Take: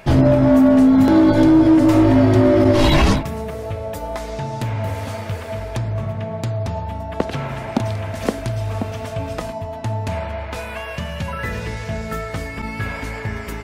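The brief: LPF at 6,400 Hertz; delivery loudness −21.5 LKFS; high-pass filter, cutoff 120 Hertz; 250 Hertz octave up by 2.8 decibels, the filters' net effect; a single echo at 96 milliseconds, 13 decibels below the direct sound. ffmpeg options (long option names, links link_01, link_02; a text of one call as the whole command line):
ffmpeg -i in.wav -af "highpass=120,lowpass=6400,equalizer=frequency=250:width_type=o:gain=3.5,aecho=1:1:96:0.224,volume=-6dB" out.wav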